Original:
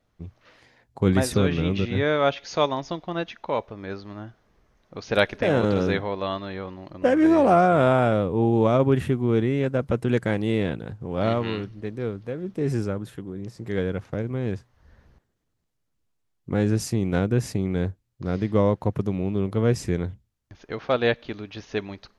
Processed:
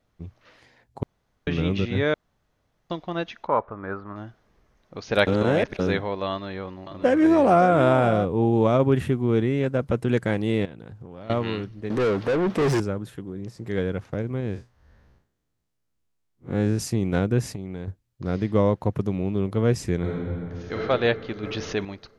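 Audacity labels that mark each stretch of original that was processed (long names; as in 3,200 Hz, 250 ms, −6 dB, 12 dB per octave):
1.030000	1.470000	fill with room tone
2.140000	2.900000	fill with room tone
3.470000	4.160000	low-pass with resonance 1,300 Hz, resonance Q 3.6
5.270000	5.790000	reverse
6.300000	8.250000	single-tap delay 564 ms −12 dB
10.650000	11.300000	downward compressor 12 to 1, threshold −36 dBFS
11.900000	12.800000	mid-hump overdrive drive 32 dB, tone 2,300 Hz, clips at −14.5 dBFS
14.400000	16.790000	spectrum smeared in time width 94 ms
17.460000	17.880000	downward compressor, threshold −29 dBFS
19.980000	20.760000	thrown reverb, RT60 2.7 s, DRR −5.5 dB
21.430000	21.850000	envelope flattener amount 50%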